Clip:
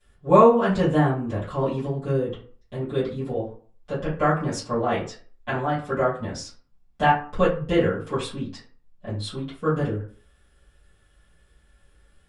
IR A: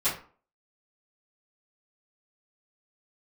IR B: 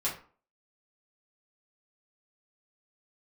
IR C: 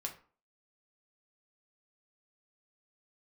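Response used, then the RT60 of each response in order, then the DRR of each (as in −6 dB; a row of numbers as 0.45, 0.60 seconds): A; 0.40, 0.40, 0.40 seconds; −15.5, −6.5, 1.5 decibels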